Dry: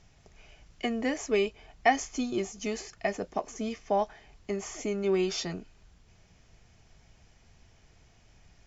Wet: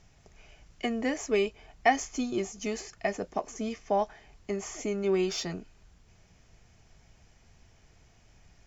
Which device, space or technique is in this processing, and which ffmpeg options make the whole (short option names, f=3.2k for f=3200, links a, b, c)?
exciter from parts: -filter_complex "[0:a]asplit=2[a][b];[b]highpass=3k,asoftclip=type=tanh:threshold=-37.5dB,highpass=3.3k,volume=-10.5dB[c];[a][c]amix=inputs=2:normalize=0"